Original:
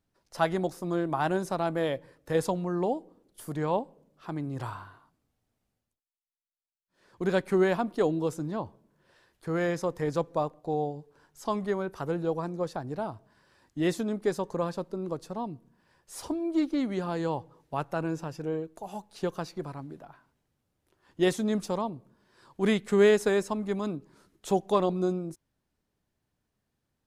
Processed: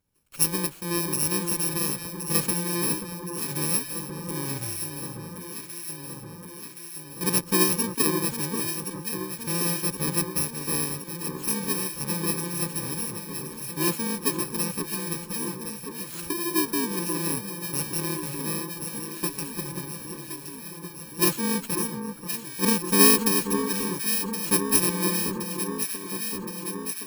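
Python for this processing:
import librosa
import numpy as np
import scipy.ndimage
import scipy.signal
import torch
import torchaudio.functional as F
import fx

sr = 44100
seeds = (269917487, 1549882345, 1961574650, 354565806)

y = fx.bit_reversed(x, sr, seeds[0], block=64)
y = fx.cheby_harmonics(y, sr, harmonics=(3,), levels_db=(-16,), full_scale_db=-11.0)
y = fx.echo_alternate(y, sr, ms=535, hz=1500.0, feedback_pct=83, wet_db=-6.5)
y = y * librosa.db_to_amplitude(7.5)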